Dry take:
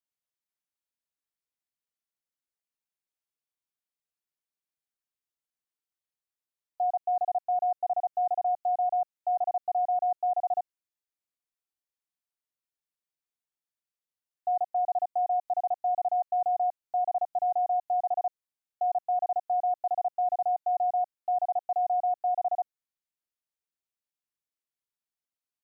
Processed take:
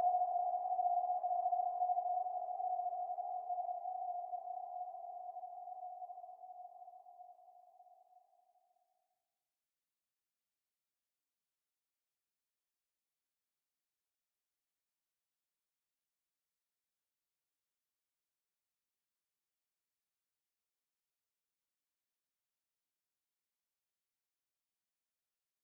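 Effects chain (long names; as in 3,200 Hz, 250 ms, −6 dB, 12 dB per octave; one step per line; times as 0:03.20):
spectral magnitudes quantised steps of 30 dB
extreme stretch with random phases 19×, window 1.00 s, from 0:22.61
level −3.5 dB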